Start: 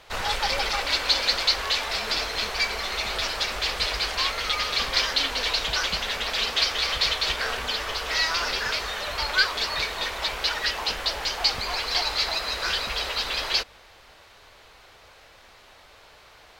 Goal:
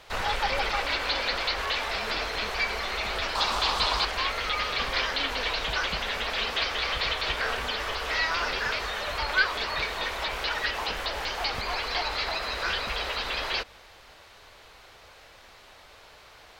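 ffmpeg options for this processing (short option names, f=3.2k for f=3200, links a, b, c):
-filter_complex "[0:a]acrossover=split=3300[a][b];[b]acompressor=threshold=-40dB:ratio=4:attack=1:release=60[c];[a][c]amix=inputs=2:normalize=0,asettb=1/sr,asplit=3[d][e][f];[d]atrim=end=3.354[g];[e]atrim=start=3.35:end=4.05,asetpts=PTS-STARTPTS,afade=t=in:d=0.004:c=qsin,afade=t=out:st=0.696:d=0.004:c=qsin,equalizer=f=250:t=o:w=1:g=4,equalizer=f=500:t=o:w=1:g=-3,equalizer=f=1k:t=o:w=1:g=11,equalizer=f=2k:t=o:w=1:g=-6,equalizer=f=4k:t=o:w=1:g=7,equalizer=f=8k:t=o:w=1:g=5[h];[f]atrim=start=4.046[i];[g][h]acrossfade=d=0.004:c1=hsin:c2=qsin[j];[j][i]acrossfade=d=0.004:c1=qsin:c2=hsin"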